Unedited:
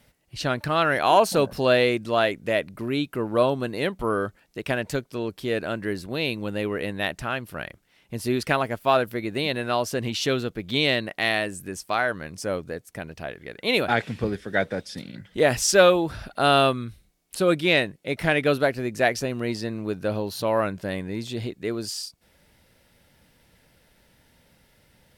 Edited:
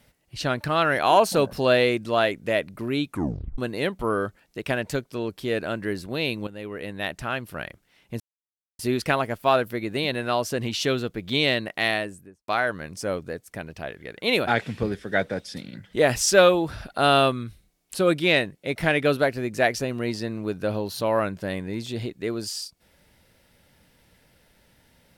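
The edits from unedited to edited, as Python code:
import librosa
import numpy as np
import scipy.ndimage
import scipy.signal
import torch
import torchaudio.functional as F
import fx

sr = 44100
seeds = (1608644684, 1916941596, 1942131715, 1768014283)

y = fx.studio_fade_out(x, sr, start_s=11.28, length_s=0.61)
y = fx.edit(y, sr, fx.tape_stop(start_s=3.07, length_s=0.51),
    fx.fade_in_from(start_s=6.47, length_s=0.88, floor_db=-12.5),
    fx.insert_silence(at_s=8.2, length_s=0.59), tone=tone)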